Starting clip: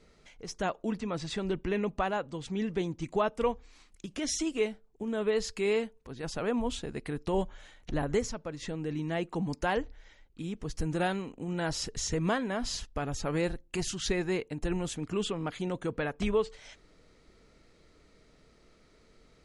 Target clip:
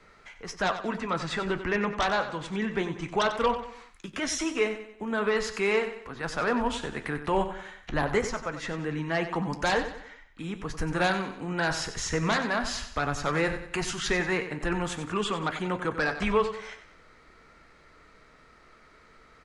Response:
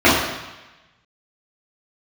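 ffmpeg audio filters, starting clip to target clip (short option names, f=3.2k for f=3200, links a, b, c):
-filter_complex "[0:a]flanger=delay=10:depth=4.6:regen=-68:speed=0.19:shape=triangular,acrossover=split=200|1100|1700[a][b][c][d];[c]aeval=exprs='0.0316*sin(PI/2*5.01*val(0)/0.0316)':c=same[e];[a][b][e][d]amix=inputs=4:normalize=0,aecho=1:1:93|186|279|372:0.282|0.121|0.0521|0.0224,volume=5dB"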